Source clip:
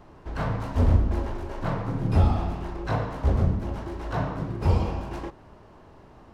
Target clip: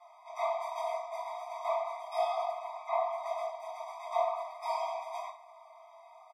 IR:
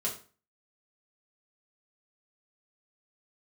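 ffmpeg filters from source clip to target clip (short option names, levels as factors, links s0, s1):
-filter_complex "[0:a]aecho=1:1:4.3:0.41[s0];[1:a]atrim=start_sample=2205[s1];[s0][s1]afir=irnorm=-1:irlink=0,asettb=1/sr,asplit=3[s2][s3][s4];[s2]atrim=end=2.514[s5];[s3]atrim=start=2.51:end=3.26,asetpts=PTS-STARTPTS,afade=t=in:d=0.004:c=qsin,afade=t=out:st=0.746:d=0.004:c=qsin,acrossover=split=2500[s6][s7];[s7]acompressor=threshold=0.002:ratio=4:attack=1:release=60[s8];[s6][s8]amix=inputs=2:normalize=0[s9];[s4]atrim=start=3.256[s10];[s5][s9]acrossfade=d=0.004:c1=hsin:c2=qsin[s11];[s11][s10]acrossfade=d=0.004:c1=qsin:c2=hsin,afftfilt=real='re*eq(mod(floor(b*sr/1024/640),2),1)':imag='im*eq(mod(floor(b*sr/1024/640),2),1)':win_size=1024:overlap=0.75,volume=0.708"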